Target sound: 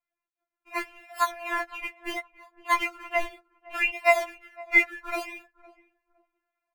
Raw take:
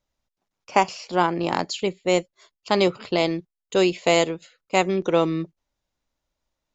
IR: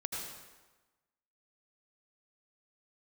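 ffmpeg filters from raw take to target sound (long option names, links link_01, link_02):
-filter_complex "[0:a]acrossover=split=1200[link_01][link_02];[link_01]acompressor=threshold=-33dB:ratio=6[link_03];[link_03][link_02]amix=inputs=2:normalize=0,asuperpass=centerf=1300:order=12:qfactor=0.69,asplit=2[link_04][link_05];[link_05]acrusher=samples=28:mix=1:aa=0.000001:lfo=1:lforange=28:lforate=0.68,volume=-7dB[link_06];[link_04][link_06]amix=inputs=2:normalize=0,asplit=2[link_07][link_08];[link_08]adelay=510,lowpass=frequency=880:poles=1,volume=-19dB,asplit=2[link_09][link_10];[link_10]adelay=510,lowpass=frequency=880:poles=1,volume=0.26[link_11];[link_07][link_09][link_11]amix=inputs=3:normalize=0[link_12];[1:a]atrim=start_sample=2205,atrim=end_sample=3087,asetrate=37485,aresample=44100[link_13];[link_12][link_13]afir=irnorm=-1:irlink=0,dynaudnorm=framelen=230:gausssize=11:maxgain=9dB,afftfilt=real='re*4*eq(mod(b,16),0)':imag='im*4*eq(mod(b,16),0)':win_size=2048:overlap=0.75"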